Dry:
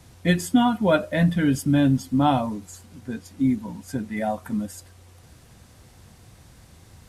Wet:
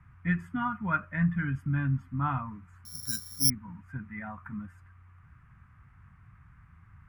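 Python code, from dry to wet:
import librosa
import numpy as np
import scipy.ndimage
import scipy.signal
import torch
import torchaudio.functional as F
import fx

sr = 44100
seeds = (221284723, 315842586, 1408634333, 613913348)

y = fx.curve_eq(x, sr, hz=(160.0, 230.0, 540.0, 840.0, 1200.0, 2400.0, 3900.0), db=(0, -10, -24, -10, 6, -5, -30))
y = fx.resample_bad(y, sr, factor=8, down='filtered', up='zero_stuff', at=(2.85, 3.5))
y = y * 10.0 ** (-4.5 / 20.0)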